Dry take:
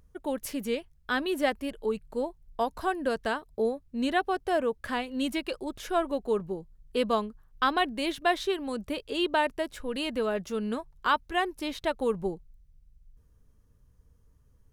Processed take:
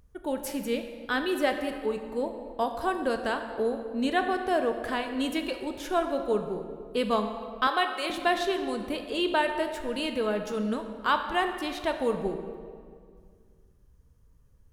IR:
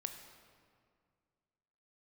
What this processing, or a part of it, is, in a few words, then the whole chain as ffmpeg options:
stairwell: -filter_complex "[1:a]atrim=start_sample=2205[a];[0:a][a]afir=irnorm=-1:irlink=0,asettb=1/sr,asplit=3[b][c][d];[b]atrim=end=7.674[e];[c]atrim=start=7.67:end=8.1,asetpts=PTS-STARTPTS,afade=t=in:d=0.004:c=qsin,afade=t=out:st=0.426:d=0.004:c=qsin,highpass=f=390:w=0.5412,highpass=f=390:w=1.3066[f];[d]atrim=start=8.096[g];[e][f]acrossfade=d=0.004:c1=hsin:c2=qsin[h];[h][g]acrossfade=d=0.004:c1=qsin:c2=hsin,volume=3dB"

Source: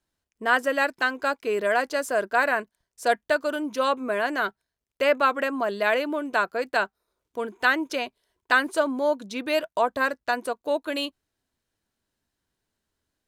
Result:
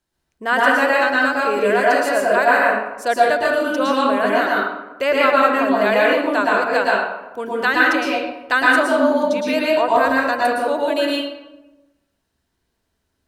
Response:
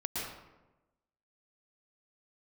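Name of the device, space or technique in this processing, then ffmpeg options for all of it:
bathroom: -filter_complex "[1:a]atrim=start_sample=2205[a];[0:a][a]afir=irnorm=-1:irlink=0,asettb=1/sr,asplit=3[b][c][d];[b]atrim=end=9.514[e];[c]atrim=start=9.51:end=9.94,asetpts=PTS-STARTPTS,afade=t=in:d=0.004:c=qsin,afade=t=out:st=0.426:d=0.004:c=qsin,highshelf=f=8.9k:g=-5[f];[d]atrim=start=9.936[g];[e][f]acrossfade=d=0.004:c1=hsin:c2=qsin[h];[h][g]acrossfade=d=0.004:c1=qsin:c2=hsin,volume=4dB"

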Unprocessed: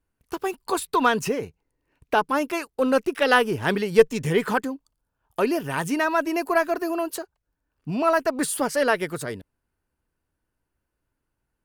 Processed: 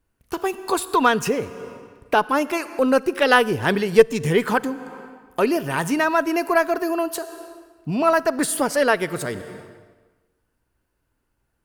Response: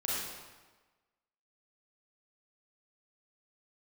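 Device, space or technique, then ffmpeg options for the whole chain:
ducked reverb: -filter_complex "[0:a]asplit=3[a][b][c];[1:a]atrim=start_sample=2205[d];[b][d]afir=irnorm=-1:irlink=0[e];[c]apad=whole_len=513715[f];[e][f]sidechaincompress=threshold=-37dB:ratio=8:attack=23:release=313,volume=-7dB[g];[a][g]amix=inputs=2:normalize=0,asettb=1/sr,asplit=3[h][i][j];[h]atrim=end=2.554[k];[i]atrim=start=2.55:end=3.16,asetpts=PTS-STARTPTS,afade=t=in:d=0.004:c=qsin,afade=t=out:st=0.606:d=0.004:c=qsin,equalizer=f=3.4k:w=6.2:g=-8[l];[j]atrim=start=3.156[m];[k][l]acrossfade=d=0.004:c1=hsin:c2=qsin[n];[n][m]acrossfade=d=0.004:c1=qsin:c2=hsin,volume=2.5dB"

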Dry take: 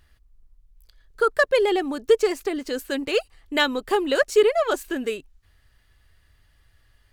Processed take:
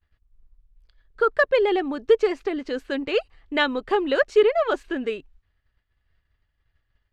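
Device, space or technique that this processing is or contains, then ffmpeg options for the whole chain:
hearing-loss simulation: -af "lowpass=3.3k,agate=range=-33dB:threshold=-49dB:ratio=3:detection=peak"

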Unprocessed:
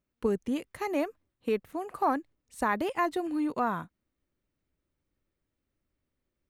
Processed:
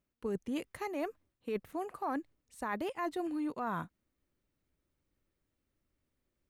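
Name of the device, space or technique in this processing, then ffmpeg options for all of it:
compression on the reversed sound: -af "areverse,acompressor=threshold=-33dB:ratio=6,areverse"

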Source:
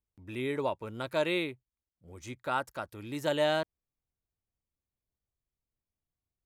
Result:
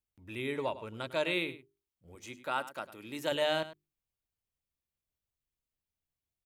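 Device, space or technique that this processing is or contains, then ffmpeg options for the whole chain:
presence and air boost: -filter_complex "[0:a]asettb=1/sr,asplit=3[a][b][c];[a]atrim=end=2.154[d];[b]atrim=start=2.15:end=3.32,asetpts=PTS-STARTPTS,afade=t=in:d=0.004:c=qsin,afade=t=out:st=1.166:d=0.004:c=qsin,highpass=170[e];[c]atrim=start=3.316[f];[d][e]acrossfade=d=0.004:c1=hsin:c2=qsin[g];[g][f]acrossfade=d=0.004:c1=qsin:c2=hsin,bandreject=f=50:t=h:w=6,bandreject=f=100:t=h:w=6,bandreject=f=150:t=h:w=6,bandreject=f=200:t=h:w=6,bandreject=f=250:t=h:w=6,bandreject=f=300:t=h:w=6,bandreject=f=350:t=h:w=6,bandreject=f=400:t=h:w=6,asettb=1/sr,asplit=3[h][i][j];[h]atrim=end=0.514[k];[i]atrim=start=0.51:end=1.33,asetpts=PTS-STARTPTS,afade=t=in:d=0.004:c=qsin,afade=t=out:st=0.816:d=0.004:c=qsin,lowpass=11k[l];[j]atrim=start=1.326[m];[k][l]acrossfade=d=0.004:c1=hsin:c2=qsin[n];[n][m]acrossfade=d=0.004:c1=qsin:c2=hsin,equalizer=f=2.8k:t=o:w=0.9:g=4.5,highshelf=f=10k:g=5.5,aecho=1:1:102:0.178,volume=-3dB"

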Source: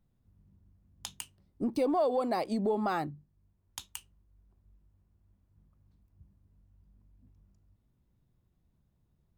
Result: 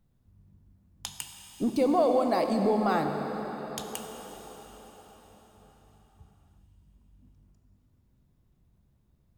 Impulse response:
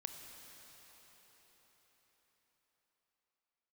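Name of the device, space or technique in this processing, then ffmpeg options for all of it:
cathedral: -filter_complex "[1:a]atrim=start_sample=2205[a];[0:a][a]afir=irnorm=-1:irlink=0,volume=7.5dB"

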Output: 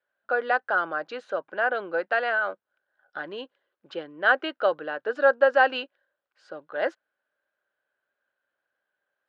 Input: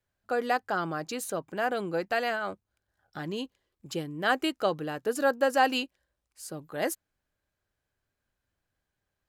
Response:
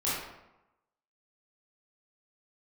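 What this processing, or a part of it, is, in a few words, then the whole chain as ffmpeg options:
phone earpiece: -af "highpass=430,equalizer=f=560:t=q:w=4:g=7,equalizer=f=1.5k:t=q:w=4:g=10,equalizer=f=2.3k:t=q:w=4:g=-4,lowpass=f=3.5k:w=0.5412,lowpass=f=3.5k:w=1.3066,volume=1dB"

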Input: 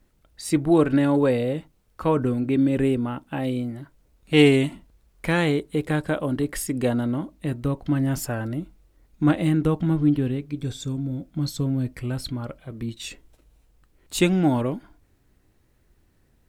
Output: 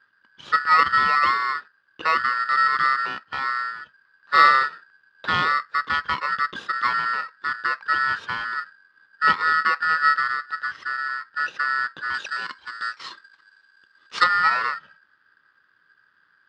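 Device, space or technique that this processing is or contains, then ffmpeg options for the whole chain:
ring modulator pedal into a guitar cabinet: -filter_complex "[0:a]aeval=exprs='val(0)*sgn(sin(2*PI*1600*n/s))':c=same,highpass=100,equalizer=f=270:t=q:w=4:g=-4,equalizer=f=700:t=q:w=4:g=-8,equalizer=f=1.2k:t=q:w=4:g=4,equalizer=f=2.2k:t=q:w=4:g=-10,lowpass=f=3.6k:w=0.5412,lowpass=f=3.6k:w=1.3066,asettb=1/sr,asplit=3[a][b][c];[a]atrim=end=12.144[d];[b]atrim=start=12.14:end=14.24,asetpts=PTS-STARTPTS,afade=t=in:d=0.004:c=qsin,afade=t=out:st=2.096:d=0.004:c=qsin,equalizer=f=125:t=o:w=1:g=-6,equalizer=f=4k:t=o:w=1:g=5,equalizer=f=8k:t=o:w=1:g=10[e];[c]atrim=start=14.236[f];[d][e]acrossfade=d=0.004:c1=hsin:c2=qsin[g];[g][f]acrossfade=d=0.004:c1=qsin:c2=hsin,volume=1.5dB"

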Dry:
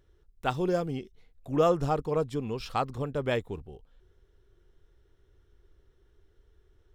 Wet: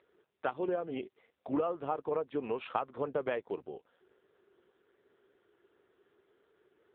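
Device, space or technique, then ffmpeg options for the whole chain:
voicemail: -af "highpass=400,lowpass=2.6k,acompressor=threshold=-37dB:ratio=12,volume=8.5dB" -ar 8000 -c:a libopencore_amrnb -b:a 5900

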